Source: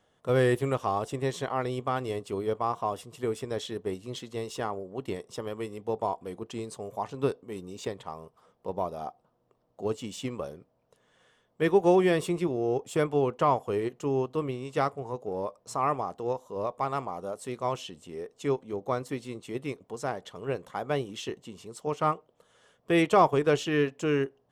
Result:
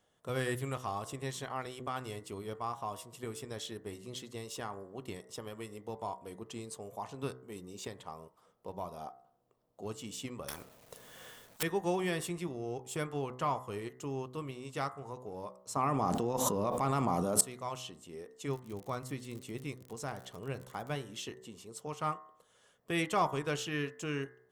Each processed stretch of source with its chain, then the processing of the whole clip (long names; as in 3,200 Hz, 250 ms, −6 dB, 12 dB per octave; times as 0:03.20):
0:10.48–0:11.63: mu-law and A-law mismatch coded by A + every bin compressed towards the loudest bin 10 to 1
0:15.76–0:17.41: parametric band 230 Hz +9.5 dB 2.1 octaves + envelope flattener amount 100%
0:18.47–0:20.94: low-shelf EQ 200 Hz +7 dB + surface crackle 50 per second −38 dBFS
whole clip: high-shelf EQ 6,700 Hz +9 dB; hum removal 63.29 Hz, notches 33; dynamic equaliser 450 Hz, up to −7 dB, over −38 dBFS, Q 0.89; level −5.5 dB